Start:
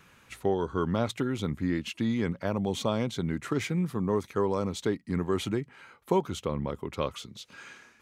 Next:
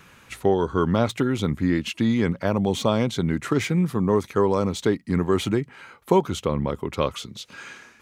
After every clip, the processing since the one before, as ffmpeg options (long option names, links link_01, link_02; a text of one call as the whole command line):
ffmpeg -i in.wav -af "deesser=0.8,volume=7dB" out.wav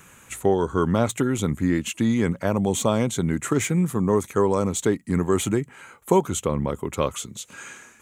ffmpeg -i in.wav -af "highshelf=frequency=6000:width_type=q:width=3:gain=6.5" out.wav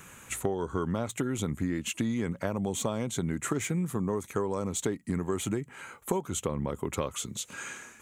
ffmpeg -i in.wav -af "acompressor=threshold=-27dB:ratio=6" out.wav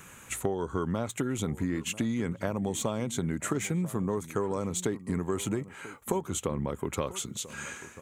ffmpeg -i in.wav -filter_complex "[0:a]asplit=2[link_01][link_02];[link_02]adelay=991.3,volume=-16dB,highshelf=frequency=4000:gain=-22.3[link_03];[link_01][link_03]amix=inputs=2:normalize=0" out.wav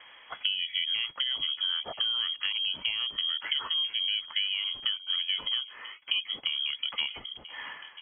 ffmpeg -i in.wav -af "lowpass=frequency=2900:width_type=q:width=0.5098,lowpass=frequency=2900:width_type=q:width=0.6013,lowpass=frequency=2900:width_type=q:width=0.9,lowpass=frequency=2900:width_type=q:width=2.563,afreqshift=-3400" out.wav